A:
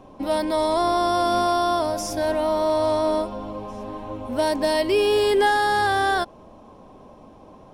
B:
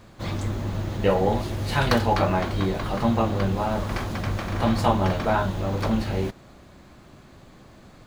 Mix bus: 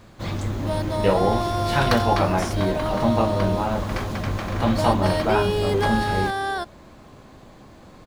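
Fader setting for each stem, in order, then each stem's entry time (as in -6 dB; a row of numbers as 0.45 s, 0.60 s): -5.0 dB, +1.0 dB; 0.40 s, 0.00 s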